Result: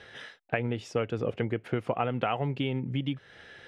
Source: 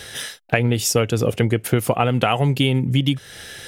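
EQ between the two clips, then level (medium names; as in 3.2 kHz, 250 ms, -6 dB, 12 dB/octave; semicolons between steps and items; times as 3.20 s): low-pass 2.3 kHz 12 dB/octave; bass shelf 140 Hz -8.5 dB; -9.0 dB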